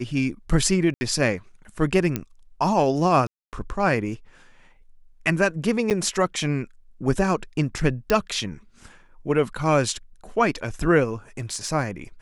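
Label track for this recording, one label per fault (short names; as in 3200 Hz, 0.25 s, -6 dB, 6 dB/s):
0.940000	1.010000	gap 70 ms
2.160000	2.160000	pop -10 dBFS
3.270000	3.530000	gap 0.258 s
5.900000	5.910000	gap 8.5 ms
8.100000	8.100000	pop
11.380000	11.690000	clipped -21 dBFS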